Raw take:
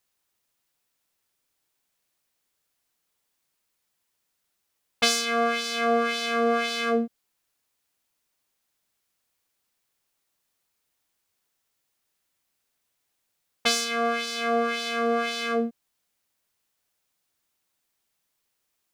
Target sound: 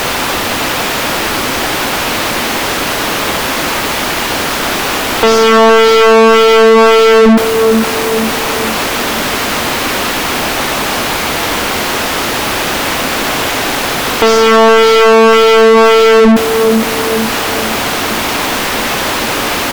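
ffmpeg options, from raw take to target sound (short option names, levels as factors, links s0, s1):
-filter_complex "[0:a]aeval=exprs='val(0)+0.5*0.0668*sgn(val(0))':c=same,equalizer=f=250:t=o:w=1:g=12,equalizer=f=2000:t=o:w=1:g=-7,equalizer=f=4000:t=o:w=1:g=-8,asplit=2[s0][s1];[s1]adelay=444,lowpass=f=1100:p=1,volume=0.376,asplit=2[s2][s3];[s3]adelay=444,lowpass=f=1100:p=1,volume=0.54,asplit=2[s4][s5];[s5]adelay=444,lowpass=f=1100:p=1,volume=0.54,asplit=2[s6][s7];[s7]adelay=444,lowpass=f=1100:p=1,volume=0.54,asplit=2[s8][s9];[s9]adelay=444,lowpass=f=1100:p=1,volume=0.54,asplit=2[s10][s11];[s11]adelay=444,lowpass=f=1100:p=1,volume=0.54[s12];[s0][s2][s4][s6][s8][s10][s12]amix=inputs=7:normalize=0,asplit=2[s13][s14];[s14]highpass=f=720:p=1,volume=79.4,asoftclip=type=tanh:threshold=0.794[s15];[s13][s15]amix=inputs=2:normalize=0,lowpass=f=3400:p=1,volume=0.501,asplit=2[s16][s17];[s17]adynamicsmooth=sensitivity=2:basefreq=1300,volume=1.26[s18];[s16][s18]amix=inputs=2:normalize=0,asetrate=42336,aresample=44100,volume=0.631"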